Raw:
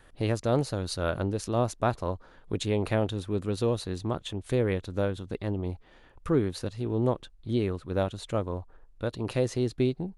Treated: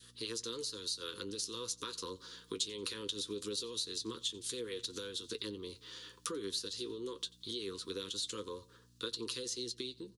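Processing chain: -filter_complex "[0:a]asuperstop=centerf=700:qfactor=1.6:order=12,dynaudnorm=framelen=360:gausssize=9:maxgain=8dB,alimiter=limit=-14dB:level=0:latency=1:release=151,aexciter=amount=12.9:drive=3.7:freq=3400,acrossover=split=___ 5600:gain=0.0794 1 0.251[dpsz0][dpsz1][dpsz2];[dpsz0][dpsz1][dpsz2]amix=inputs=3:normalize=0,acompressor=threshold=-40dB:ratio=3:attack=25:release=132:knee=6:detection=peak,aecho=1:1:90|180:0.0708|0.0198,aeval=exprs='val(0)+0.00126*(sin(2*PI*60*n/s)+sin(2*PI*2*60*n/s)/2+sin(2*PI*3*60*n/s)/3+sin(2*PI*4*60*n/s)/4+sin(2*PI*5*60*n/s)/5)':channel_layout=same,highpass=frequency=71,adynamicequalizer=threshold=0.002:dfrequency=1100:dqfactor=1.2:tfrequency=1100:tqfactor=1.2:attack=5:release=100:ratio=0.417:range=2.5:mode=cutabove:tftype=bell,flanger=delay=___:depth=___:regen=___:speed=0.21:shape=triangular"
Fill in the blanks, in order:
300, 8.4, 2.5, 42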